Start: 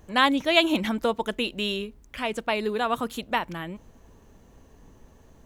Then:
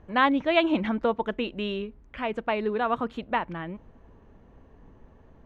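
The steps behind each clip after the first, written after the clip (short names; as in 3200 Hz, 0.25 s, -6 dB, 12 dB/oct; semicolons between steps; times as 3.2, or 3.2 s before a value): LPF 2100 Hz 12 dB/oct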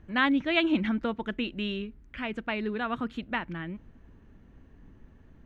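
band shelf 690 Hz -8.5 dB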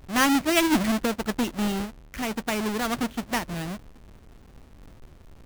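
half-waves squared off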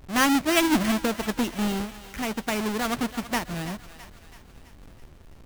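thinning echo 0.33 s, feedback 57%, high-pass 650 Hz, level -13 dB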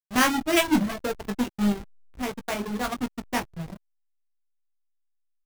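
reverse bouncing-ball echo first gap 20 ms, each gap 1.2×, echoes 5; reverb removal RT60 1.9 s; backlash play -26 dBFS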